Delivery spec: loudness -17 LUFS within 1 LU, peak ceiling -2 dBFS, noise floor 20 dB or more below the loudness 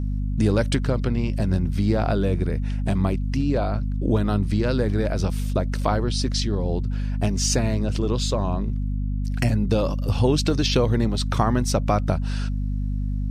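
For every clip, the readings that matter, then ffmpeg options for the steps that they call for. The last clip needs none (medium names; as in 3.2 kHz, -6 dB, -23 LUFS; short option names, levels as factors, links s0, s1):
hum 50 Hz; highest harmonic 250 Hz; hum level -22 dBFS; loudness -23.5 LUFS; peak level -5.5 dBFS; loudness target -17.0 LUFS
-> -af "bandreject=f=50:t=h:w=4,bandreject=f=100:t=h:w=4,bandreject=f=150:t=h:w=4,bandreject=f=200:t=h:w=4,bandreject=f=250:t=h:w=4"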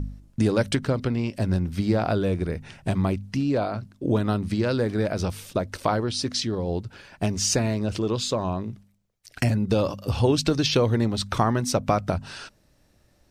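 hum not found; loudness -25.0 LUFS; peak level -6.0 dBFS; loudness target -17.0 LUFS
-> -af "volume=2.51,alimiter=limit=0.794:level=0:latency=1"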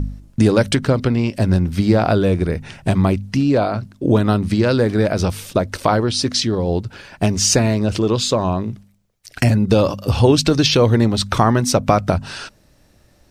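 loudness -17.5 LUFS; peak level -2.0 dBFS; noise floor -54 dBFS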